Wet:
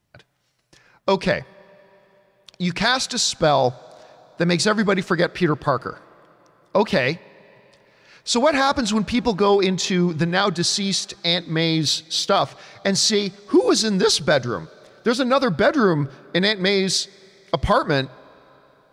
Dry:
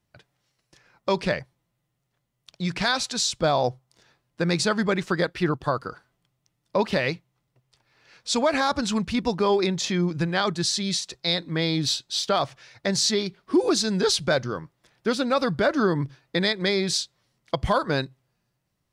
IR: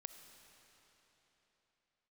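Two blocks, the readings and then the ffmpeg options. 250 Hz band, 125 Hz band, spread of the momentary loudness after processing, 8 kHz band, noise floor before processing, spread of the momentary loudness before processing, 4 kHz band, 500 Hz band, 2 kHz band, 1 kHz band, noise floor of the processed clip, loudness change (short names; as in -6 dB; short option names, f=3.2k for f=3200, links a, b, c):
+4.5 dB, +4.0 dB, 8 LU, +4.0 dB, -77 dBFS, 9 LU, +4.5 dB, +5.0 dB, +5.0 dB, +5.0 dB, -60 dBFS, +4.5 dB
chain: -filter_complex "[0:a]asplit=2[a][b];[1:a]atrim=start_sample=2205,lowshelf=f=190:g=-10.5,highshelf=f=5.6k:g=-11.5[c];[b][c]afir=irnorm=-1:irlink=0,volume=-8.5dB[d];[a][d]amix=inputs=2:normalize=0,volume=3.5dB"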